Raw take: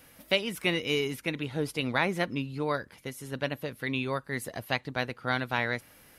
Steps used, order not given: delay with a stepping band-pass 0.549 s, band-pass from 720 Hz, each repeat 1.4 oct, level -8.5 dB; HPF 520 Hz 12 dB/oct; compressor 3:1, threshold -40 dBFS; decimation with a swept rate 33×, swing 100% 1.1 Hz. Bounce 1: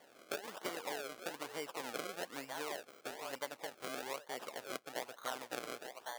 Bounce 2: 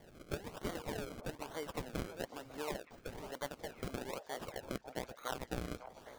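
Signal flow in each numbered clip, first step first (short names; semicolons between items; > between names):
delay with a stepping band-pass > decimation with a swept rate > HPF > compressor; HPF > compressor > decimation with a swept rate > delay with a stepping band-pass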